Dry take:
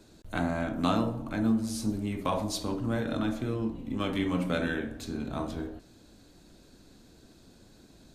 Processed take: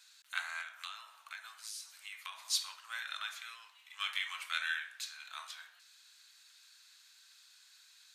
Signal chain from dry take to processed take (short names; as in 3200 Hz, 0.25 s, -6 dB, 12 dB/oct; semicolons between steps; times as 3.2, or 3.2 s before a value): Bessel high-pass 2200 Hz, order 6; high shelf 4400 Hz -6 dB; 0.61–2.45 compressor 5:1, threshold -50 dBFS, peak gain reduction 13 dB; gain +7 dB